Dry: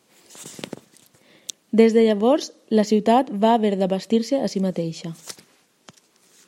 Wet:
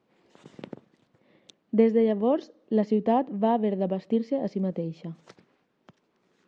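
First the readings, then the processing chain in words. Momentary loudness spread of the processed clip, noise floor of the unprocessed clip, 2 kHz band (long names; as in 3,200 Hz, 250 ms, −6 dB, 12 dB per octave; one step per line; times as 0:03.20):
19 LU, −63 dBFS, −11.5 dB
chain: head-to-tape spacing loss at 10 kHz 35 dB
level −4.5 dB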